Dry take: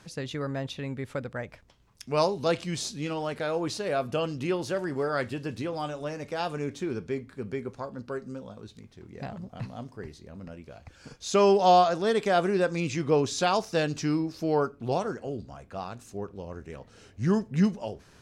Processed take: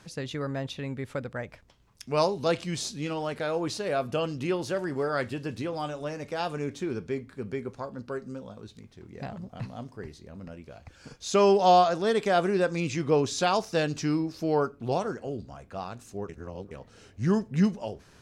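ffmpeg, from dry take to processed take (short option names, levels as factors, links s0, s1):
-filter_complex "[0:a]asplit=3[s0][s1][s2];[s0]atrim=end=16.292[s3];[s1]atrim=start=16.288:end=16.712,asetpts=PTS-STARTPTS,areverse[s4];[s2]atrim=start=16.708[s5];[s3][s4]acrossfade=d=0.004:c1=hsin:c2=hsin[s6];[s6][s5]acrossfade=d=0.004:c1=hsin:c2=hsin"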